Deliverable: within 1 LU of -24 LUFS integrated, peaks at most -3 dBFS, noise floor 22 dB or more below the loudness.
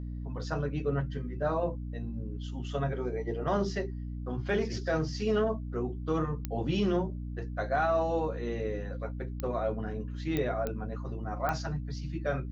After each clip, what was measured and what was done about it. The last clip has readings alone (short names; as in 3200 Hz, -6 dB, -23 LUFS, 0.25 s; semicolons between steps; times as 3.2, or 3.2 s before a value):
clicks 5; hum 60 Hz; harmonics up to 300 Hz; hum level -35 dBFS; loudness -33.0 LUFS; peak -14.5 dBFS; loudness target -24.0 LUFS
-> de-click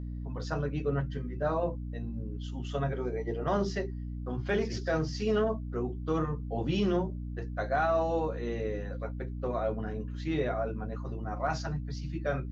clicks 0; hum 60 Hz; harmonics up to 300 Hz; hum level -35 dBFS
-> de-hum 60 Hz, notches 5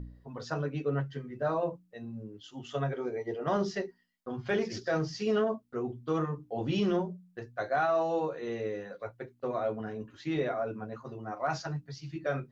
hum none; loudness -33.5 LUFS; peak -19.5 dBFS; loudness target -24.0 LUFS
-> gain +9.5 dB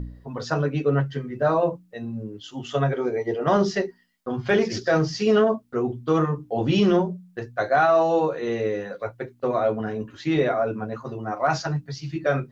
loudness -24.0 LUFS; peak -10.0 dBFS; noise floor -57 dBFS